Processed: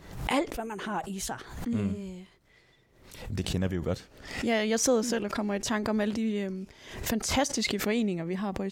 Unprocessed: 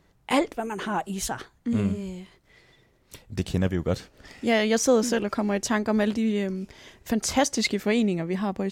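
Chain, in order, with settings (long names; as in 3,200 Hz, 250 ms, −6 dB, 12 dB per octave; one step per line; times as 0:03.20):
background raised ahead of every attack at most 81 dB per second
level −5 dB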